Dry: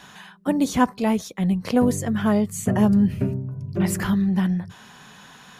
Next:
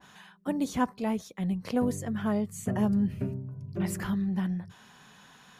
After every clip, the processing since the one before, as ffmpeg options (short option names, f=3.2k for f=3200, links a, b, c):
-af "adynamicequalizer=threshold=0.0126:dfrequency=2000:dqfactor=0.7:tfrequency=2000:tqfactor=0.7:attack=5:release=100:ratio=0.375:range=1.5:mode=cutabove:tftype=highshelf,volume=-8.5dB"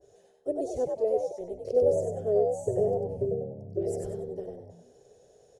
-filter_complex "[0:a]firequalizer=gain_entry='entry(110,0);entry(190,-27);entry(400,13);entry(640,4);entry(910,-27);entry(1800,-25);entry(3400,-22);entry(5500,-8);entry(9300,-7);entry(13000,-24)':delay=0.05:min_phase=1,asplit=5[a][b][c][d][e];[b]adelay=96,afreqshift=73,volume=-4dB[f];[c]adelay=192,afreqshift=146,volume=-14.5dB[g];[d]adelay=288,afreqshift=219,volume=-24.9dB[h];[e]adelay=384,afreqshift=292,volume=-35.4dB[i];[a][f][g][h][i]amix=inputs=5:normalize=0"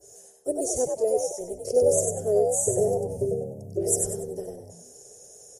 -af "aexciter=amount=5.2:drive=10:freq=5.6k,volume=3dB" -ar 44100 -c:a libmp3lame -b:a 56k